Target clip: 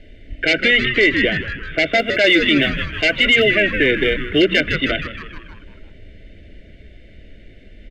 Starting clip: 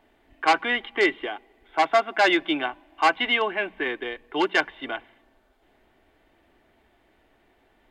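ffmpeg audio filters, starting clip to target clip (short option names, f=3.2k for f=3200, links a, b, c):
-filter_complex "[0:a]lowpass=5.7k,highshelf=f=3.9k:g=-5,asplit=3[a][b][c];[a]afade=t=out:st=1.98:d=0.02[d];[b]aphaser=in_gain=1:out_gain=1:delay=4.8:decay=0.25:speed=1.8:type=sinusoidal,afade=t=in:st=1.98:d=0.02,afade=t=out:st=4.58:d=0.02[e];[c]afade=t=in:st=4.58:d=0.02[f];[d][e][f]amix=inputs=3:normalize=0,asuperstop=centerf=1000:order=8:qfactor=0.85,lowshelf=f=120:g=11,aecho=1:1:1.4:0.46,asplit=7[g][h][i][j][k][l][m];[h]adelay=156,afreqshift=-110,volume=-12.5dB[n];[i]adelay=312,afreqshift=-220,volume=-17.2dB[o];[j]adelay=468,afreqshift=-330,volume=-22dB[p];[k]adelay=624,afreqshift=-440,volume=-26.7dB[q];[l]adelay=780,afreqshift=-550,volume=-31.4dB[r];[m]adelay=936,afreqshift=-660,volume=-36.2dB[s];[g][n][o][p][q][r][s]amix=inputs=7:normalize=0,acontrast=84,bandreject=f=60:t=h:w=6,bandreject=f=120:t=h:w=6,bandreject=f=180:t=h:w=6,bandreject=f=240:t=h:w=6,alimiter=level_in=13.5dB:limit=-1dB:release=50:level=0:latency=1,volume=-4.5dB"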